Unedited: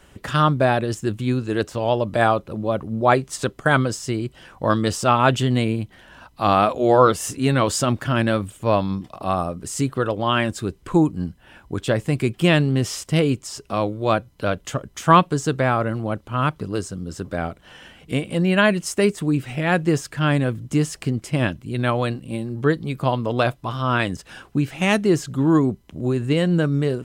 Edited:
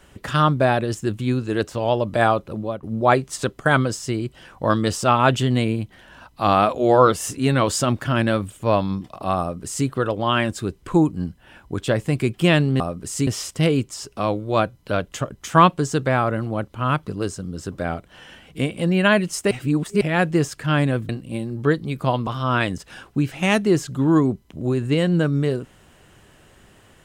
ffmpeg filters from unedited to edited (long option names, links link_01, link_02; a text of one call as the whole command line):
ffmpeg -i in.wav -filter_complex "[0:a]asplit=8[link_01][link_02][link_03][link_04][link_05][link_06][link_07][link_08];[link_01]atrim=end=2.83,asetpts=PTS-STARTPTS,afade=type=out:start_time=2.57:duration=0.26:silence=0.177828[link_09];[link_02]atrim=start=2.83:end=12.802,asetpts=PTS-STARTPTS,afade=type=in:duration=0.004:curve=hsin:silence=0.177828[link_10];[link_03]atrim=start=9.398:end=9.872[link_11];[link_04]atrim=start=12.798:end=19.042[link_12];[link_05]atrim=start=19.038:end=19.542,asetpts=PTS-STARTPTS,areverse[link_13];[link_06]atrim=start=19.538:end=20.622[link_14];[link_07]atrim=start=22.078:end=23.262[link_15];[link_08]atrim=start=23.658[link_16];[link_09][link_10]concat=n=2:v=0:a=1[link_17];[link_17][link_11]acrossfade=duration=0.004:curve1=hsin:curve2=hsin[link_18];[link_18][link_12]acrossfade=duration=0.004:curve1=hsin:curve2=hsin[link_19];[link_19][link_13]acrossfade=duration=0.004:curve1=hsin:curve2=hsin[link_20];[link_20][link_14]acrossfade=duration=0.004:curve1=hsin:curve2=hsin[link_21];[link_21][link_15]acrossfade=duration=0.004:curve1=hsin:curve2=hsin[link_22];[link_22][link_16]acrossfade=duration=0.004:curve1=hsin:curve2=hsin" out.wav